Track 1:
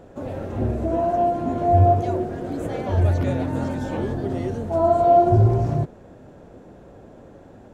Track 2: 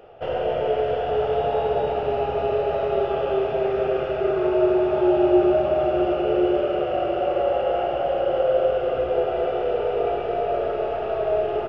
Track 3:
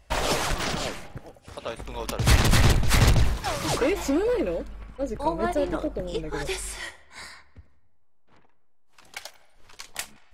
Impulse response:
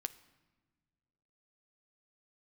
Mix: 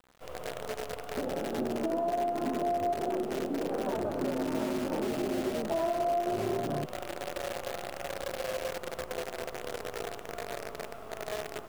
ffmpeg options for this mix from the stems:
-filter_complex "[0:a]afwtdn=0.0398,adelay=1000,volume=-0.5dB[link_01];[1:a]acrusher=bits=4:dc=4:mix=0:aa=0.000001,volume=-14dB[link_02];[link_01]highpass=frequency=190:width=0.5412,highpass=frequency=190:width=1.3066,acompressor=threshold=-24dB:ratio=3,volume=0dB[link_03];[link_02][link_03]amix=inputs=2:normalize=0,acompressor=threshold=-31dB:ratio=2"

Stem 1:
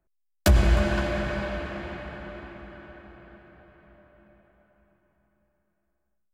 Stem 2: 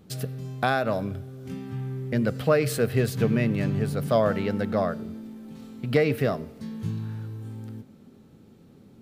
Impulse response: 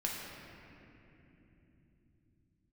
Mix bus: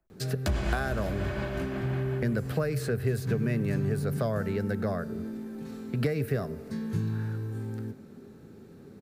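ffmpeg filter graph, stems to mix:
-filter_complex "[0:a]tremolo=f=5.6:d=0.35,volume=-0.5dB[link_01];[1:a]equalizer=frequency=400:width_type=o:width=0.33:gain=7,equalizer=frequency=1600:width_type=o:width=0.33:gain=7,equalizer=frequency=3150:width_type=o:width=0.33:gain=-6,adelay=100,volume=2dB[link_02];[link_01][link_02]amix=inputs=2:normalize=0,acrossover=split=160|6600[link_03][link_04][link_05];[link_03]acompressor=threshold=-28dB:ratio=4[link_06];[link_04]acompressor=threshold=-31dB:ratio=4[link_07];[link_05]acompressor=threshold=-48dB:ratio=4[link_08];[link_06][link_07][link_08]amix=inputs=3:normalize=0"

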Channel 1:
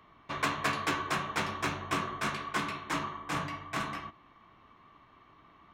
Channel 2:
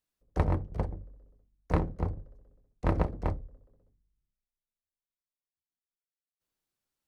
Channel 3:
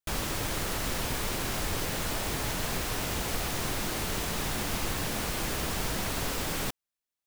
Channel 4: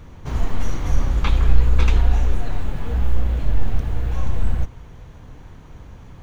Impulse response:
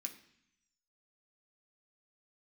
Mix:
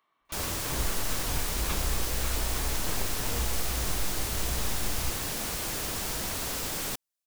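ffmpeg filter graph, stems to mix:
-filter_complex "[0:a]highpass=frequency=620:poles=1,volume=-13.5dB[link_01];[1:a]volume=-12.5dB[link_02];[2:a]adelay=250,volume=-3dB[link_03];[3:a]acompressor=threshold=-20dB:ratio=6,adelay=450,volume=-4.5dB[link_04];[link_01][link_02][link_03][link_04]amix=inputs=4:normalize=0,bass=frequency=250:gain=-3,treble=frequency=4000:gain=6"

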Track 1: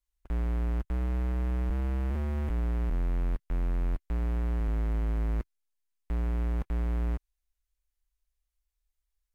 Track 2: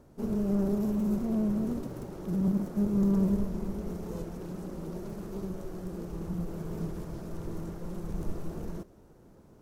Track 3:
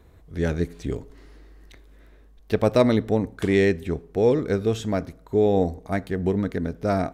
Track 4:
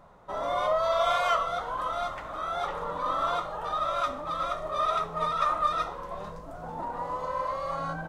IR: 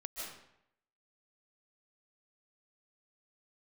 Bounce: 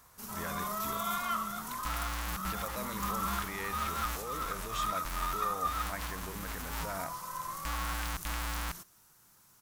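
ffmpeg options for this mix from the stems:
-filter_complex "[0:a]acrusher=bits=4:mix=0:aa=0.000001,adelay=1550,volume=-4dB[link_01];[1:a]equalizer=frequency=130:width_type=o:width=1.1:gain=7,crystalizer=i=10:c=0,volume=-7.5dB[link_02];[2:a]equalizer=frequency=530:width=4.2:gain=9.5,volume=-4dB[link_03];[3:a]volume=-9.5dB[link_04];[link_01][link_03]amix=inputs=2:normalize=0,dynaudnorm=framelen=810:gausssize=3:maxgain=5.5dB,alimiter=limit=-22.5dB:level=0:latency=1:release=64,volume=0dB[link_05];[link_02][link_04][link_05]amix=inputs=3:normalize=0,lowshelf=frequency=740:width_type=q:width=1.5:gain=-12.5"

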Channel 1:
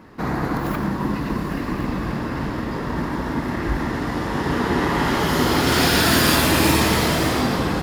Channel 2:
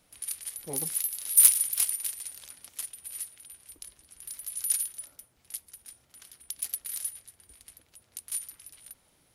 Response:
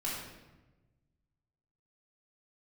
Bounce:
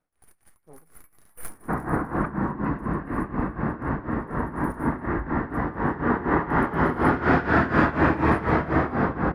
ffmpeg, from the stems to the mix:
-filter_complex "[0:a]lowpass=2500,adelay=1500,volume=-0.5dB,asplit=2[link_01][link_02];[link_02]volume=-16.5dB[link_03];[1:a]aeval=exprs='if(lt(val(0),0),0.447*val(0),val(0))':channel_layout=same,volume=-9.5dB,asplit=2[link_04][link_05];[link_05]volume=-14dB[link_06];[2:a]atrim=start_sample=2205[link_07];[link_03][link_06]amix=inputs=2:normalize=0[link_08];[link_08][link_07]afir=irnorm=-1:irlink=0[link_09];[link_01][link_04][link_09]amix=inputs=3:normalize=0,highshelf=frequency=2300:width_type=q:width=1.5:gain=-12,tremolo=f=4.1:d=0.83"

